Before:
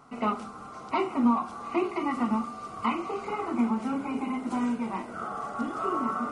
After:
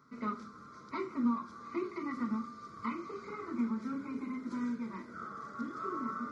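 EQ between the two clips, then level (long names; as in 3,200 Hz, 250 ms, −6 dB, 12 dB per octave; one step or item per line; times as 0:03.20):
high-pass filter 74 Hz
phaser with its sweep stopped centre 2,800 Hz, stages 6
−6.0 dB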